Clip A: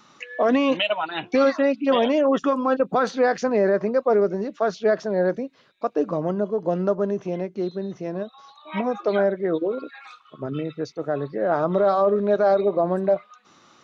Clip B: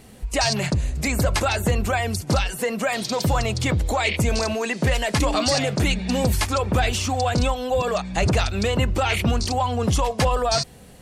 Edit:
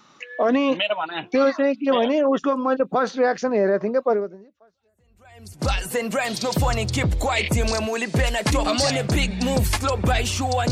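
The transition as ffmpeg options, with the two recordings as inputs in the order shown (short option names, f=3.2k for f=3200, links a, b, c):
-filter_complex "[0:a]apad=whole_dur=10.71,atrim=end=10.71,atrim=end=5.71,asetpts=PTS-STARTPTS[a];[1:a]atrim=start=0.79:end=7.39,asetpts=PTS-STARTPTS[b];[a][b]acrossfade=d=1.6:c1=exp:c2=exp"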